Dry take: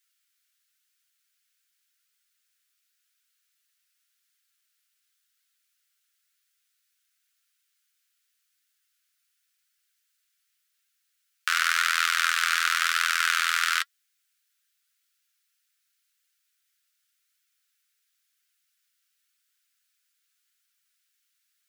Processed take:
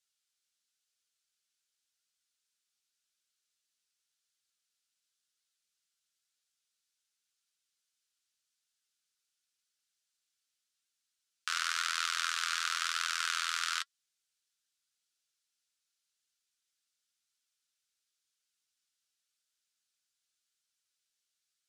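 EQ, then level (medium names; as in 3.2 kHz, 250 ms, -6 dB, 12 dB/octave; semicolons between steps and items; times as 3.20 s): low-pass 7.8 kHz 12 dB/octave; peaking EQ 1.9 kHz -10 dB 1.4 oct; -3.0 dB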